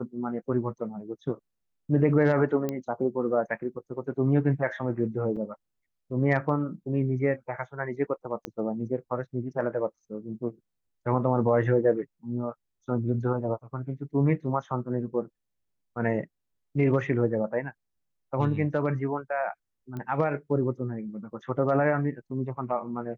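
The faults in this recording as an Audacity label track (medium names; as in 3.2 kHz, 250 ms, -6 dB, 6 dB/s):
2.690000	2.690000	pop -17 dBFS
5.360000	5.370000	dropout 6 ms
8.450000	8.450000	pop -18 dBFS
19.970000	19.970000	pop -25 dBFS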